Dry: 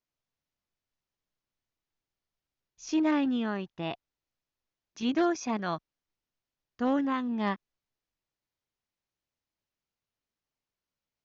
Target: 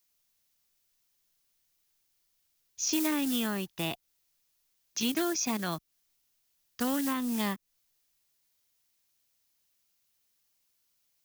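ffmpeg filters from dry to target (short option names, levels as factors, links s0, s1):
-filter_complex "[0:a]acrusher=bits=6:mode=log:mix=0:aa=0.000001,acrossover=split=390|940[s0][s1][s2];[s0]acompressor=threshold=0.0224:ratio=4[s3];[s1]acompressor=threshold=0.00562:ratio=4[s4];[s2]acompressor=threshold=0.00562:ratio=4[s5];[s3][s4][s5]amix=inputs=3:normalize=0,crystalizer=i=6:c=0,volume=1.26"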